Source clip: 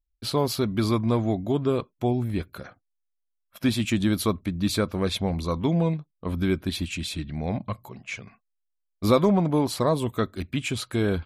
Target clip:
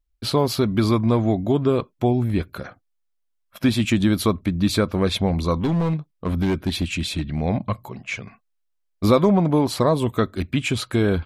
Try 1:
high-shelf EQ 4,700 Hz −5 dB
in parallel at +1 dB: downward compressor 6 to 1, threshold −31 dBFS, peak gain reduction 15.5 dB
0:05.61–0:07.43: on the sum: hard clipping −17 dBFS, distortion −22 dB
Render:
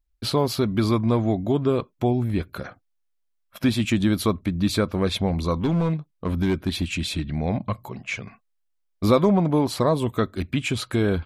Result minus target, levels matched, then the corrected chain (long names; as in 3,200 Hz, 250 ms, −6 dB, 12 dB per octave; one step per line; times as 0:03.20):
downward compressor: peak gain reduction +6.5 dB
high-shelf EQ 4,700 Hz −5 dB
in parallel at +1 dB: downward compressor 6 to 1, threshold −23 dBFS, peak gain reduction 9 dB
0:05.61–0:07.43: on the sum: hard clipping −17 dBFS, distortion −19 dB